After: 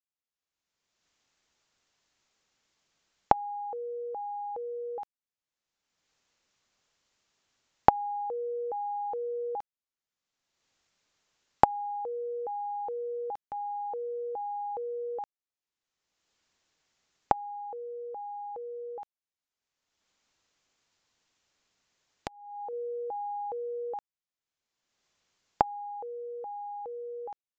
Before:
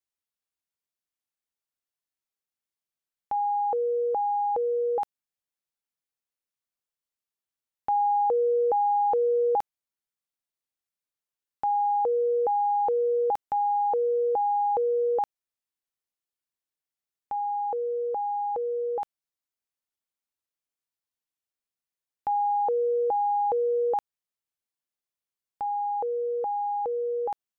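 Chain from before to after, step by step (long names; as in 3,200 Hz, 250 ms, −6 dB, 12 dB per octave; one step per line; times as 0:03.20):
camcorder AGC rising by 28 dB per second
downsampling to 16,000 Hz
0:18.91–0:22.73: downward compressor 16 to 1, threshold −25 dBFS, peak gain reduction 22.5 dB
level −10.5 dB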